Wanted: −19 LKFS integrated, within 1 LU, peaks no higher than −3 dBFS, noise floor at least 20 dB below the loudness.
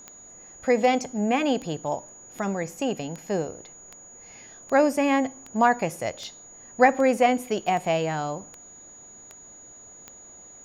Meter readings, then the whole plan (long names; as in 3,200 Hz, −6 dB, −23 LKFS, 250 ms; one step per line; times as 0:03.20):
number of clicks 14; interfering tone 6,800 Hz; level of the tone −45 dBFS; integrated loudness −24.5 LKFS; sample peak −5.5 dBFS; target loudness −19.0 LKFS
→ click removal
notch filter 6,800 Hz, Q 30
level +5.5 dB
brickwall limiter −3 dBFS